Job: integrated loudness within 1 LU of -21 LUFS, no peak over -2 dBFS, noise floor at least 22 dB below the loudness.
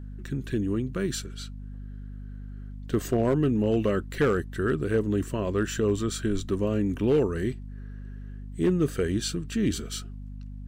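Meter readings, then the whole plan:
clipped 0.4%; flat tops at -16.0 dBFS; hum 50 Hz; harmonics up to 250 Hz; hum level -36 dBFS; loudness -27.0 LUFS; peak -16.0 dBFS; loudness target -21.0 LUFS
-> clip repair -16 dBFS; notches 50/100/150/200/250 Hz; gain +6 dB

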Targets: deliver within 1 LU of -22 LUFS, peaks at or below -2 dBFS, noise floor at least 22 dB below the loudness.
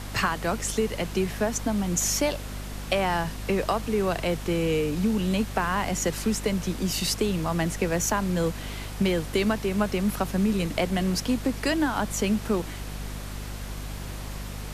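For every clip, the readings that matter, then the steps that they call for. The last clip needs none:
hum 50 Hz; harmonics up to 250 Hz; hum level -34 dBFS; noise floor -36 dBFS; noise floor target -49 dBFS; loudness -27.0 LUFS; peak -9.5 dBFS; loudness target -22.0 LUFS
-> notches 50/100/150/200/250 Hz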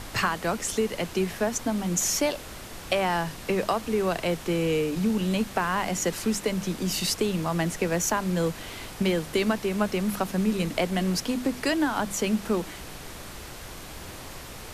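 hum none; noise floor -41 dBFS; noise floor target -49 dBFS
-> noise print and reduce 8 dB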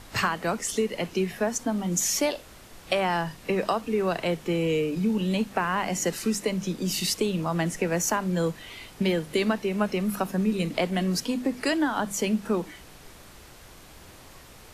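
noise floor -49 dBFS; loudness -27.0 LUFS; peak -10.0 dBFS; loudness target -22.0 LUFS
-> gain +5 dB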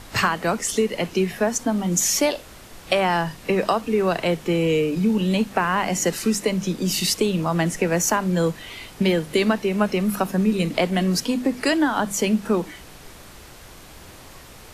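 loudness -22.0 LUFS; peak -5.0 dBFS; noise floor -44 dBFS

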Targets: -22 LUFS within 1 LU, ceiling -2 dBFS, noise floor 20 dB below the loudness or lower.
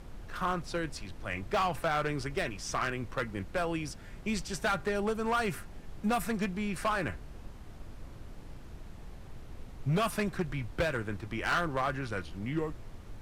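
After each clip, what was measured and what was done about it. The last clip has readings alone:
clipped 1.3%; flat tops at -24.0 dBFS; noise floor -47 dBFS; noise floor target -54 dBFS; loudness -33.5 LUFS; peak -24.0 dBFS; loudness target -22.0 LUFS
-> clip repair -24 dBFS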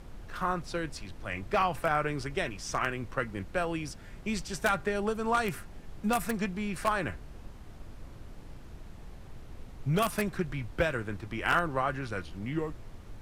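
clipped 0.0%; noise floor -47 dBFS; noise floor target -52 dBFS
-> noise print and reduce 6 dB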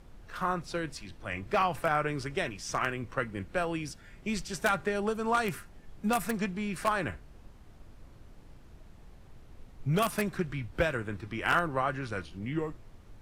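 noise floor -53 dBFS; loudness -32.0 LUFS; peak -15.0 dBFS; loudness target -22.0 LUFS
-> gain +10 dB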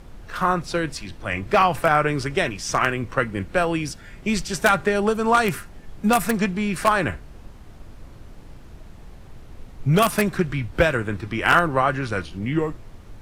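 loudness -22.0 LUFS; peak -5.0 dBFS; noise floor -43 dBFS

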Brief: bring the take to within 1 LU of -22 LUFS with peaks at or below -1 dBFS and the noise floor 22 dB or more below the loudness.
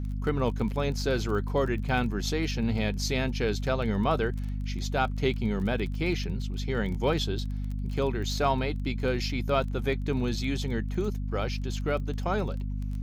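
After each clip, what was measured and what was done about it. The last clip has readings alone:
ticks 20/s; hum 50 Hz; harmonics up to 250 Hz; hum level -29 dBFS; loudness -29.5 LUFS; peak -12.5 dBFS; loudness target -22.0 LUFS
-> de-click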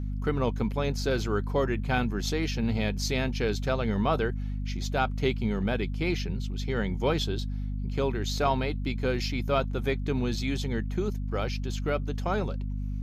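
ticks 0/s; hum 50 Hz; harmonics up to 250 Hz; hum level -29 dBFS
-> de-hum 50 Hz, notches 5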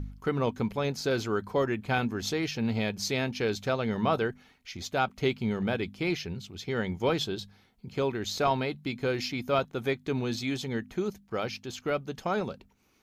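hum none; loudness -30.5 LUFS; peak -13.5 dBFS; loudness target -22.0 LUFS
-> gain +8.5 dB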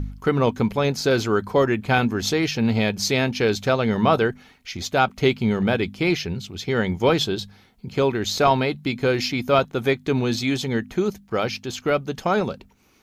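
loudness -22.0 LUFS; peak -5.0 dBFS; noise floor -55 dBFS

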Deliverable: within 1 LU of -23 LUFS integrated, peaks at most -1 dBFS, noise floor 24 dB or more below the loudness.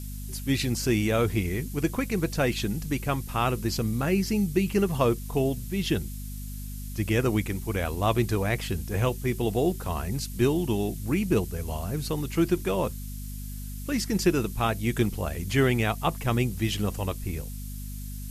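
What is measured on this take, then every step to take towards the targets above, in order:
hum 50 Hz; harmonics up to 250 Hz; hum level -34 dBFS; noise floor -36 dBFS; noise floor target -52 dBFS; loudness -27.5 LUFS; peak -10.0 dBFS; loudness target -23.0 LUFS
-> de-hum 50 Hz, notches 5; noise print and reduce 16 dB; gain +4.5 dB

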